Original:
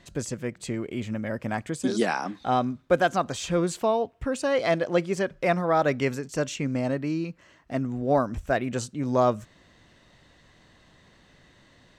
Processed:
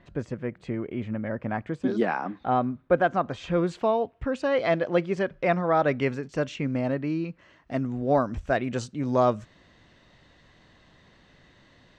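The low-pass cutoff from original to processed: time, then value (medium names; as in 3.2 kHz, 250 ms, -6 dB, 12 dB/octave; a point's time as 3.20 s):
3.18 s 2 kHz
3.79 s 3.4 kHz
7.29 s 3.4 kHz
7.74 s 5.5 kHz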